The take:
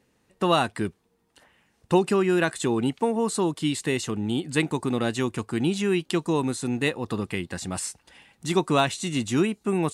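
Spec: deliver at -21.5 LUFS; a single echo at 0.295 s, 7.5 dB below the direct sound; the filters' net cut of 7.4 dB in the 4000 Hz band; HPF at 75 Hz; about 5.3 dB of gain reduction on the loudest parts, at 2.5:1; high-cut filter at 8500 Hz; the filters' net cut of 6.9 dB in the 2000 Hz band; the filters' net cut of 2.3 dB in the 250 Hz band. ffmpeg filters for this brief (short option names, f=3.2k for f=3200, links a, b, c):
-af "highpass=75,lowpass=8.5k,equalizer=f=250:t=o:g=-3,equalizer=f=2k:t=o:g=-7.5,equalizer=f=4k:t=o:g=-6.5,acompressor=threshold=-25dB:ratio=2.5,aecho=1:1:295:0.422,volume=8.5dB"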